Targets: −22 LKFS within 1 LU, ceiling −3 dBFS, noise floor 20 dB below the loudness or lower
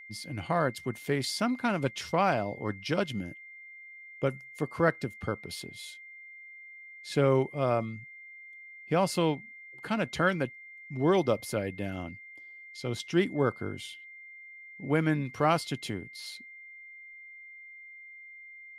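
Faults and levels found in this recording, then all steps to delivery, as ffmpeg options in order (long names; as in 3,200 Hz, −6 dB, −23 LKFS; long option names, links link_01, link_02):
interfering tone 2,100 Hz; level of the tone −46 dBFS; integrated loudness −30.5 LKFS; sample peak −10.0 dBFS; target loudness −22.0 LKFS
→ -af "bandreject=frequency=2100:width=30"
-af "volume=8.5dB,alimiter=limit=-3dB:level=0:latency=1"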